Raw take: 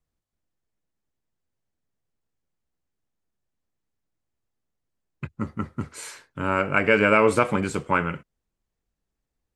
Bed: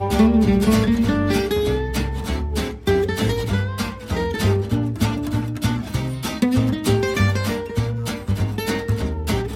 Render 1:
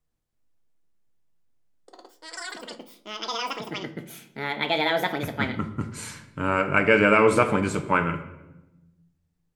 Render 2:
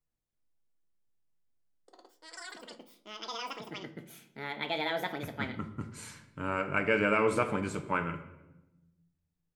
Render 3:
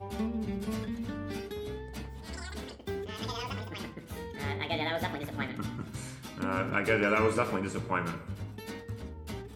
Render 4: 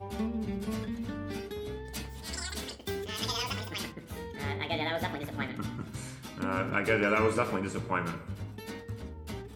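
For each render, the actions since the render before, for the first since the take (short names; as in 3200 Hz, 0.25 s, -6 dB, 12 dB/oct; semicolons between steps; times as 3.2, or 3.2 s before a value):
shoebox room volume 450 m³, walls mixed, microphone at 0.48 m; echoes that change speed 0.109 s, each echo +7 st, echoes 3, each echo -6 dB
gain -9 dB
add bed -18.5 dB
1.85–3.92 high shelf 2800 Hz +11.5 dB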